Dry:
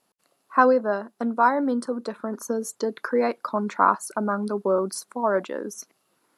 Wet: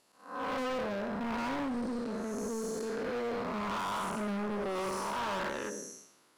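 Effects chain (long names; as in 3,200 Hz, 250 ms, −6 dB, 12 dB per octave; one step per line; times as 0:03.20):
spectrum smeared in time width 322 ms
high-shelf EQ 4,000 Hz +11 dB
gain on a spectral selection 0:04.75–0:05.69, 780–3,100 Hz +10 dB
in parallel at 0 dB: downward compressor, threshold −41 dBFS, peak gain reduction 19.5 dB
on the sum: high-frequency loss of the air 61 metres
on a send at −18 dB: convolution reverb RT60 0.35 s, pre-delay 4 ms
on the sum: gain into a clipping stage and back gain 30.5 dB
level −2 dB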